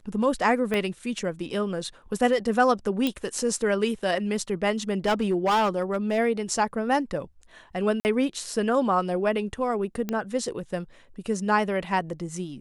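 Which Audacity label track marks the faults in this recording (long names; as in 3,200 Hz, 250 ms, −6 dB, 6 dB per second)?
0.740000	0.740000	click −14 dBFS
3.070000	3.070000	click −12 dBFS
5.050000	6.190000	clipping −18.5 dBFS
8.000000	8.050000	drop-out 49 ms
10.090000	10.090000	click −15 dBFS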